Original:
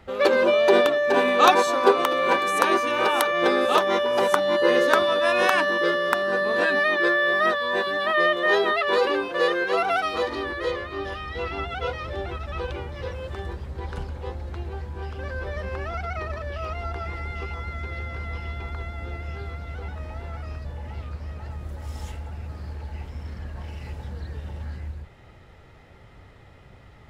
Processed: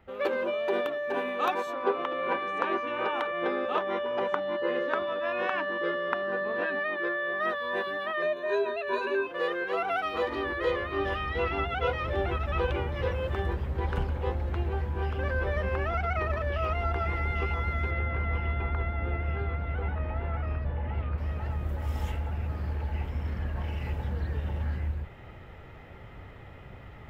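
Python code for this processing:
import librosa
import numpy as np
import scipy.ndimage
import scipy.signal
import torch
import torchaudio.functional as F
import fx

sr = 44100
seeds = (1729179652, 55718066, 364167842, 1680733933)

y = fx.air_absorb(x, sr, metres=150.0, at=(1.73, 7.4))
y = fx.ripple_eq(y, sr, per_octave=1.5, db=18, at=(8.22, 9.27))
y = fx.lowpass(y, sr, hz=2800.0, slope=12, at=(17.91, 21.18))
y = fx.band_shelf(y, sr, hz=6400.0, db=-9.5, octaves=1.7)
y = fx.rider(y, sr, range_db=10, speed_s=0.5)
y = F.gain(torch.from_numpy(y), -7.0).numpy()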